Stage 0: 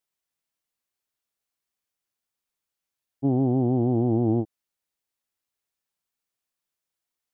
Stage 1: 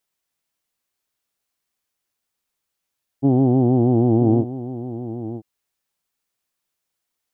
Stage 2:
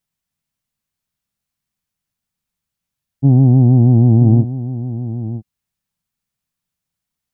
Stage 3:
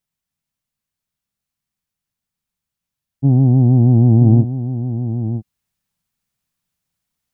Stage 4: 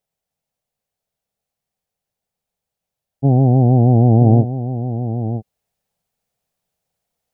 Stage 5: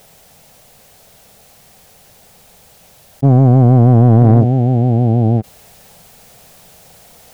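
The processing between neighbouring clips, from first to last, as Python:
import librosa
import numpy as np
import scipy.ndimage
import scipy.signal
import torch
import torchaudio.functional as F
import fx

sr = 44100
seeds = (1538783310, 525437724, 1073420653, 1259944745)

y1 = x + 10.0 ** (-13.0 / 20.0) * np.pad(x, (int(968 * sr / 1000.0), 0))[:len(x)]
y1 = y1 * librosa.db_to_amplitude(6.0)
y2 = fx.low_shelf_res(y1, sr, hz=250.0, db=11.0, q=1.5)
y2 = y2 * librosa.db_to_amplitude(-2.5)
y3 = fx.rider(y2, sr, range_db=3, speed_s=2.0)
y4 = fx.band_shelf(y3, sr, hz=580.0, db=12.0, octaves=1.2)
y4 = y4 * librosa.db_to_amplitude(-1.0)
y5 = fx.leveller(y4, sr, passes=1)
y5 = fx.env_flatten(y5, sr, amount_pct=50)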